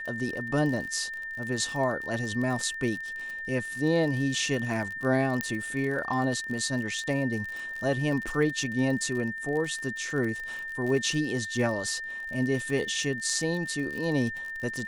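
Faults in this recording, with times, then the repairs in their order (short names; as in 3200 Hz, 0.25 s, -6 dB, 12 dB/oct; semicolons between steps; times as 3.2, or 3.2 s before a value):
crackle 42/s -33 dBFS
tone 1800 Hz -34 dBFS
5.41 pop -12 dBFS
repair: de-click; notch 1800 Hz, Q 30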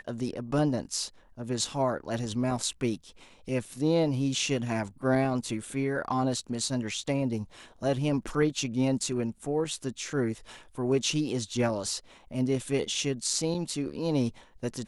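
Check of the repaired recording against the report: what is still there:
none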